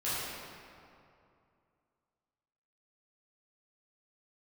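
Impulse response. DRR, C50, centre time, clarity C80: -12.5 dB, -4.0 dB, 160 ms, -1.5 dB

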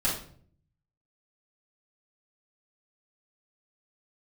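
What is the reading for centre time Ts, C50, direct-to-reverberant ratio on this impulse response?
34 ms, 5.0 dB, -8.0 dB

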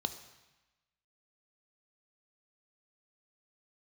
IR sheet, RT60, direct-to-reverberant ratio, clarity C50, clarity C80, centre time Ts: 1.1 s, 9.0 dB, 12.0 dB, 13.5 dB, 11 ms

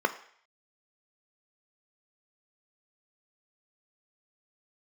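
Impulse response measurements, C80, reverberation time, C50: 17.5 dB, 0.60 s, 14.5 dB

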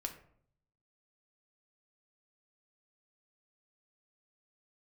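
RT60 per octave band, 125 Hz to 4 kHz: 1.0 s, 0.80 s, 0.65 s, 0.55 s, 0.45 s, 0.30 s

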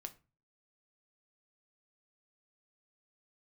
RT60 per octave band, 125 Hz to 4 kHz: 0.55 s, 0.40 s, 0.35 s, 0.30 s, 0.30 s, 0.25 s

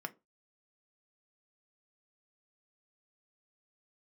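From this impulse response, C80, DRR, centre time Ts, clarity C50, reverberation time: 30.0 dB, 6.5 dB, 3 ms, 23.0 dB, 0.25 s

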